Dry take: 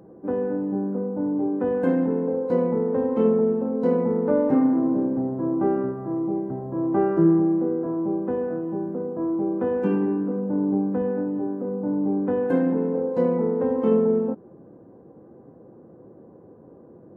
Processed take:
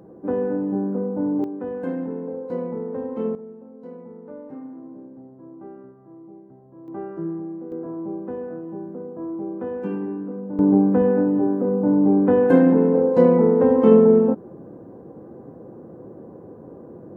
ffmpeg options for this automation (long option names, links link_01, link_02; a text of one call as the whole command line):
ffmpeg -i in.wav -af "asetnsamples=nb_out_samples=441:pad=0,asendcmd='1.44 volume volume -6dB;3.35 volume volume -18dB;6.88 volume volume -11.5dB;7.72 volume volume -5dB;10.59 volume volume 7dB',volume=2dB" out.wav